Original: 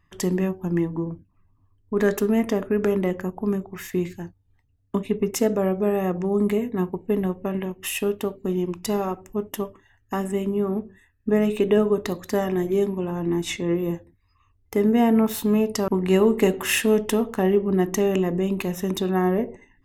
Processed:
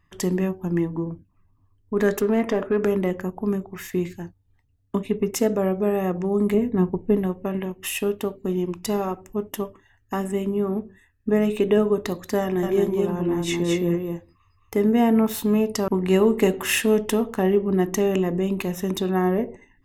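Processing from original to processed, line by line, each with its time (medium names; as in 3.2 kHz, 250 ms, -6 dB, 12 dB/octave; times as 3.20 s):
2.21–2.84 s: overdrive pedal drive 14 dB, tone 1.5 kHz, clips at -11.5 dBFS
6.54–7.17 s: tilt EQ -2 dB/octave
12.41–14.80 s: delay 217 ms -3 dB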